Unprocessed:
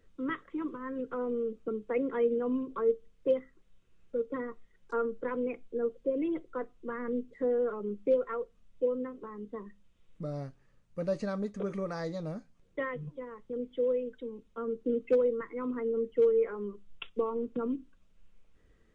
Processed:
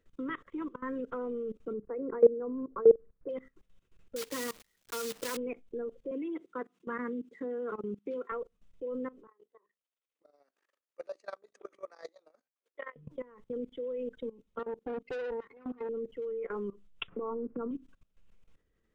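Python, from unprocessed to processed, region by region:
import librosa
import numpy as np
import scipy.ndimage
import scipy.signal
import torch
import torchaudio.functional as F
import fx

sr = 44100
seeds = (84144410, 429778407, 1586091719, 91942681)

y = fx.chain(x, sr, fx.lowpass(hz=1600.0, slope=24),
    fx.dynamic_eq(hz=410.0, q=2.7, threshold_db=-41.0, ratio=4.0, max_db=8), at=(1.73, 3.29))
y = fx.chain(y, sr, fx.block_float(bits=3),
    fx.highpass(hz=53.0, slope=6),
    fx.high_shelf(hz=2000.0, db=11.0), at=(4.16, 5.37))
y = fx.chain(y, sr, fx.steep_highpass(hz=170.0, slope=36),
    fx.peak_eq(hz=580.0, db=-9.0, octaves=0.5), at=(6.11, 8.32))
y = fx.chain(y, sr, fx.bessel_highpass(hz=560.0, order=8),
    fx.level_steps(step_db=20), at=(9.27, 12.96))
y = fx.chain(y, sr, fx.highpass(hz=180.0, slope=12),
    fx.tube_stage(drive_db=33.0, bias=0.7),
    fx.notch_comb(f0_hz=330.0), at=(14.59, 15.89))
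y = fx.chain(y, sr, fx.lowpass(hz=1600.0, slope=24),
    fx.band_squash(depth_pct=100), at=(17.08, 17.71))
y = fx.low_shelf(y, sr, hz=120.0, db=-2.0)
y = fx.level_steps(y, sr, step_db=20)
y = y * 10.0 ** (4.5 / 20.0)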